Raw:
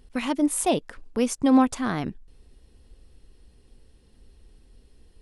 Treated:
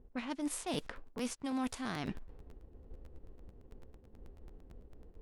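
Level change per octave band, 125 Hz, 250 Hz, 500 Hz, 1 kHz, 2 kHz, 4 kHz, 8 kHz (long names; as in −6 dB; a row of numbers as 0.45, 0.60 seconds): −9.5, −15.5, −16.0, −15.5, −10.0, −8.5, −13.5 decibels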